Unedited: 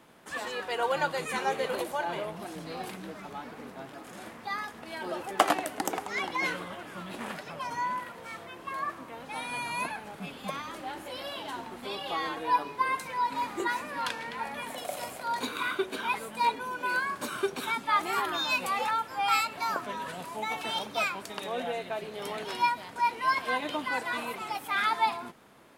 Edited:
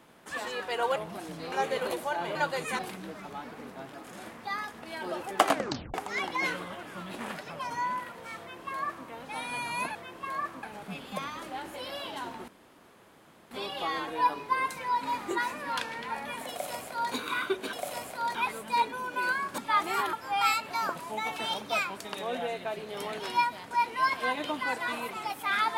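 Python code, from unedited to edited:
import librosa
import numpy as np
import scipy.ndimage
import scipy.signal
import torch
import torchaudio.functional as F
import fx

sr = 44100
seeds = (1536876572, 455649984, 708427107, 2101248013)

y = fx.edit(x, sr, fx.swap(start_s=0.96, length_s=0.44, other_s=2.23, other_length_s=0.56),
    fx.tape_stop(start_s=5.49, length_s=0.45),
    fx.duplicate(start_s=8.39, length_s=0.68, to_s=9.95),
    fx.insert_room_tone(at_s=11.8, length_s=1.03),
    fx.duplicate(start_s=14.79, length_s=0.62, to_s=16.02),
    fx.cut(start_s=17.25, length_s=0.52),
    fx.cut(start_s=18.32, length_s=0.68),
    fx.cut(start_s=19.83, length_s=0.38), tone=tone)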